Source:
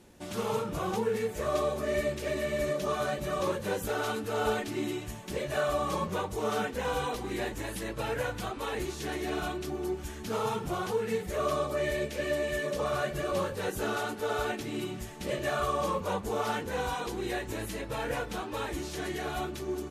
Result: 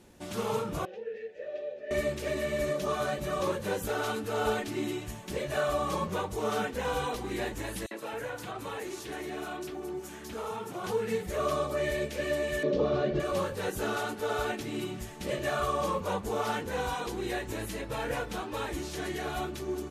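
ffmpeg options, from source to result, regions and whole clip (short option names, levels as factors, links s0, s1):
-filter_complex "[0:a]asettb=1/sr,asplit=3[s0][s1][s2];[s0]atrim=end=0.854[s3];[s1]atrim=start=0.85:end=1.91,asetpts=PTS-STARTPTS,afade=t=in:d=0.004:c=qsin,afade=t=out:st=1.056:d=0.004:c=qsin,asplit=3[s4][s5][s6];[s4]bandpass=f=530:t=q:w=8,volume=1[s7];[s5]bandpass=f=1840:t=q:w=8,volume=0.501[s8];[s6]bandpass=f=2480:t=q:w=8,volume=0.355[s9];[s7][s8][s9]amix=inputs=3:normalize=0,highshelf=f=6900:t=q:w=1.5:g=-8.5[s10];[s2]atrim=start=1.906[s11];[s3][s10]acrossfade=d=0.004:c1=hsin:c2=qsin[s12];[s12][s11]acrossfade=d=0.004:c1=qsin:c2=hsin,asettb=1/sr,asplit=3[s13][s14][s15];[s13]atrim=end=7.864[s16];[s14]atrim=start=7.86:end=10.84,asetpts=PTS-STARTPTS,afade=t=in:d=0.004:c=qsin,afade=t=out:st=2.976:d=0.004:c=qsin,highpass=120,acompressor=threshold=0.02:ratio=2.5:attack=3.2:release=140:knee=1:detection=peak,acrossover=split=180|4100[s17][s18][s19];[s18]adelay=50[s20];[s17]adelay=260[s21];[s21][s20][s19]amix=inputs=3:normalize=0,atrim=end_sample=131418[s22];[s15]atrim=start=10.836[s23];[s16][s22]acrossfade=d=0.004:c1=hsin:c2=qsin[s24];[s24][s23]acrossfade=d=0.004:c1=qsin:c2=hsin,asettb=1/sr,asplit=3[s25][s26][s27];[s25]atrim=end=12.634[s28];[s26]atrim=start=12.63:end=13.2,asetpts=PTS-STARTPTS,afade=t=in:d=0.004:c=qsin,afade=t=out:st=0.566:d=0.004:c=qsin,lowpass=f=4700:w=0.5412,lowpass=f=4700:w=1.3066,equalizer=f=360:w=0.68:g=11.5,acrossover=split=480|3000[s29][s30][s31];[s30]acompressor=threshold=0.0112:ratio=2:attack=3.2:release=140:knee=2.83:detection=peak[s32];[s29][s32][s31]amix=inputs=3:normalize=0[s33];[s27]atrim=start=13.196[s34];[s28][s33]acrossfade=d=0.004:c1=hsin:c2=qsin[s35];[s35][s34]acrossfade=d=0.004:c1=qsin:c2=hsin"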